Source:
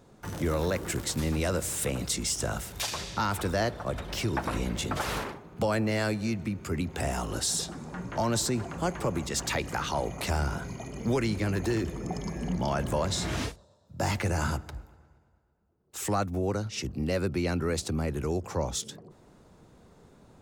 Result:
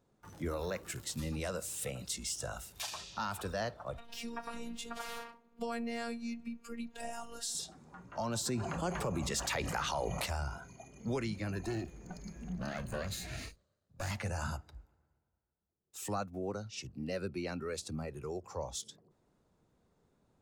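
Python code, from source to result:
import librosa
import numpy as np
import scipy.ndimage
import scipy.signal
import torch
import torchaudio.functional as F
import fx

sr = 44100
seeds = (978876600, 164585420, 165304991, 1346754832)

y = fx.robotise(x, sr, hz=233.0, at=(3.98, 7.55))
y = fx.env_flatten(y, sr, amount_pct=70, at=(8.45, 10.25), fade=0.02)
y = fx.lower_of_two(y, sr, delay_ms=0.45, at=(11.67, 14.11))
y = fx.noise_reduce_blind(y, sr, reduce_db=9)
y = y * 10.0 ** (-8.0 / 20.0)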